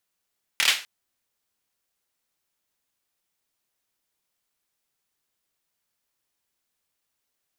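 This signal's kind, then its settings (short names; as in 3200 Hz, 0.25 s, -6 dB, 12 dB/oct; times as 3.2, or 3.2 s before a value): hand clap length 0.25 s, apart 26 ms, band 2600 Hz, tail 0.33 s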